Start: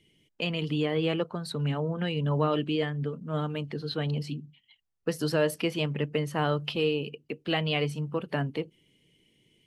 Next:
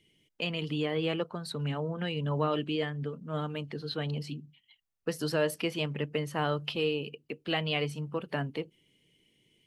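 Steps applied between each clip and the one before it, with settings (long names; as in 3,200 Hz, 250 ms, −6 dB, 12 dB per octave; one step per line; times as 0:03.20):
low-shelf EQ 470 Hz −3 dB
level −1.5 dB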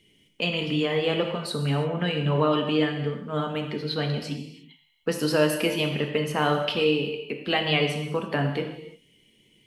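reverb whose tail is shaped and stops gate 370 ms falling, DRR 3 dB
level +6 dB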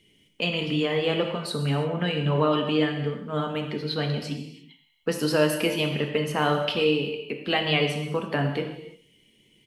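single-tap delay 130 ms −21 dB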